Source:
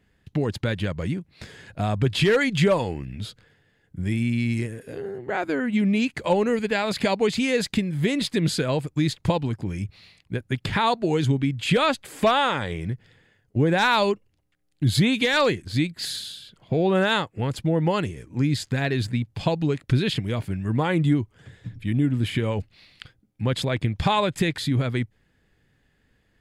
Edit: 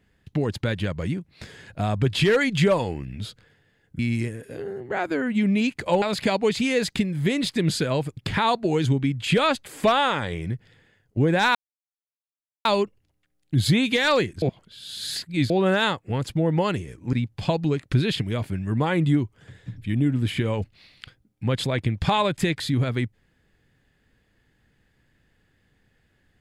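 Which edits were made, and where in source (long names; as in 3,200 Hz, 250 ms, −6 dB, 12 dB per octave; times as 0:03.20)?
0:03.99–0:04.37: remove
0:06.40–0:06.80: remove
0:08.95–0:10.56: remove
0:13.94: splice in silence 1.10 s
0:15.71–0:16.79: reverse
0:18.42–0:19.11: remove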